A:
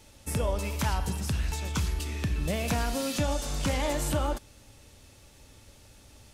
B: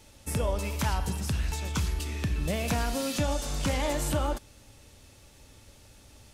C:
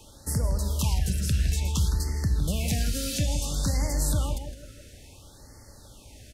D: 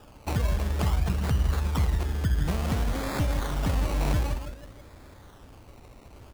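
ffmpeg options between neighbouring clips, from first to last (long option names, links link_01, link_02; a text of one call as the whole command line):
ffmpeg -i in.wav -af anull out.wav
ffmpeg -i in.wav -filter_complex "[0:a]asplit=2[link_01][link_02];[link_02]adelay=161,lowpass=frequency=4200:poles=1,volume=-8.5dB,asplit=2[link_03][link_04];[link_04]adelay=161,lowpass=frequency=4200:poles=1,volume=0.33,asplit=2[link_05][link_06];[link_06]adelay=161,lowpass=frequency=4200:poles=1,volume=0.33,asplit=2[link_07][link_08];[link_08]adelay=161,lowpass=frequency=4200:poles=1,volume=0.33[link_09];[link_01][link_03][link_05][link_07][link_09]amix=inputs=5:normalize=0,acrossover=split=200|3000[link_10][link_11][link_12];[link_11]acompressor=threshold=-50dB:ratio=2[link_13];[link_10][link_13][link_12]amix=inputs=3:normalize=0,afftfilt=real='re*(1-between(b*sr/1024,900*pow(3100/900,0.5+0.5*sin(2*PI*0.58*pts/sr))/1.41,900*pow(3100/900,0.5+0.5*sin(2*PI*0.58*pts/sr))*1.41))':imag='im*(1-between(b*sr/1024,900*pow(3100/900,0.5+0.5*sin(2*PI*0.58*pts/sr))/1.41,900*pow(3100/900,0.5+0.5*sin(2*PI*0.58*pts/sr))*1.41))':win_size=1024:overlap=0.75,volume=4.5dB" out.wav
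ffmpeg -i in.wav -af "acrusher=samples=21:mix=1:aa=0.000001:lfo=1:lforange=12.6:lforate=0.55" out.wav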